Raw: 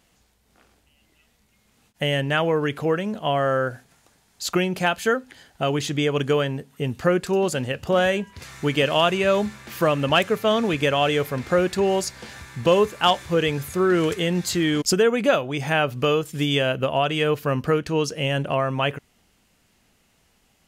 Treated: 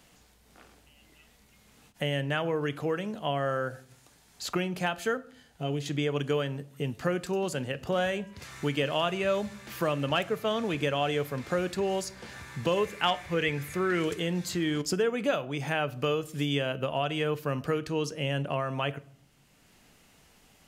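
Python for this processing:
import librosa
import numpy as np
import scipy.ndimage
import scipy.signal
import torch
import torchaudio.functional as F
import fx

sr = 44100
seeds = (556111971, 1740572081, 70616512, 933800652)

y = fx.hpss(x, sr, part='percussive', gain_db=-16, at=(5.17, 5.86))
y = fx.peak_eq(y, sr, hz=2100.0, db=9.5, octaves=0.7, at=(12.77, 14.03))
y = fx.room_shoebox(y, sr, seeds[0], volume_m3=680.0, walls='furnished', distance_m=0.39)
y = fx.band_squash(y, sr, depth_pct=40)
y = F.gain(torch.from_numpy(y), -8.5).numpy()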